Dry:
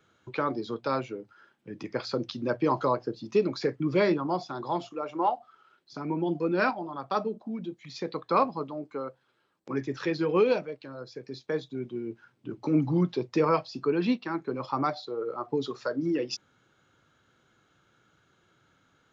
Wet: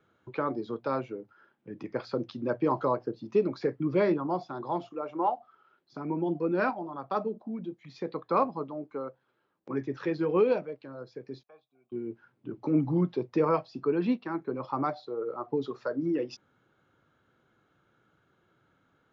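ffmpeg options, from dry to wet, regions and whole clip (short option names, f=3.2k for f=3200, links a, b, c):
-filter_complex "[0:a]asettb=1/sr,asplit=3[a][b][c];[a]atrim=end=11.434[d];[b]atrim=start=11.43:end=11.92,asetpts=PTS-STARTPTS,afade=t=in:d=0.004:c=qsin,afade=t=out:st=0.486:d=0.004:c=qsin,asplit=3[e][f][g];[e]bandpass=f=730:t=q:w=8,volume=0dB[h];[f]bandpass=f=1.09k:t=q:w=8,volume=-6dB[i];[g]bandpass=f=2.44k:t=q:w=8,volume=-9dB[j];[h][i][j]amix=inputs=3:normalize=0,equalizer=f=370:w=0.54:g=-13[k];[c]atrim=start=11.916[l];[d][k]acrossfade=d=0.004:c1=hsin:c2=qsin[m];[m][l]acrossfade=d=0.004:c1=qsin:c2=hsin,lowpass=f=1.3k:p=1,lowshelf=f=140:g=-4"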